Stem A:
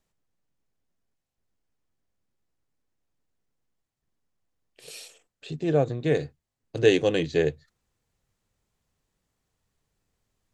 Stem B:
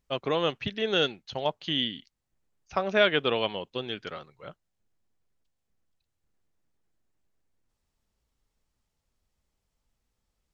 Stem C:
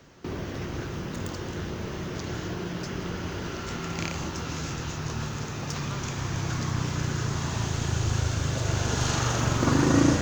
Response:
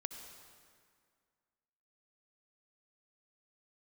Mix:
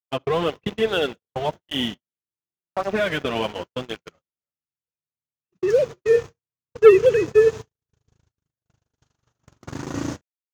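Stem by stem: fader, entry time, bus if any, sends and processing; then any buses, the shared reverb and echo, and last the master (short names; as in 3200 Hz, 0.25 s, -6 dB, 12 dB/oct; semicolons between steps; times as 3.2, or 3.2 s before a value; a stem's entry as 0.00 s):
+0.5 dB, 0.00 s, send -14.5 dB, sine-wave speech
-1.0 dB, 0.00 s, send -4.5 dB, LPF 2600 Hz 12 dB/oct; limiter -18.5 dBFS, peak gain reduction 10 dB; tape flanging out of phase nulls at 0.88 Hz, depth 7.4 ms; auto duck -8 dB, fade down 1.00 s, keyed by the first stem
-14.5 dB, 0.00 s, no send, HPF 43 Hz 24 dB/oct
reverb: on, RT60 2.1 s, pre-delay 57 ms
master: gate -35 dBFS, range -55 dB; sample leveller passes 2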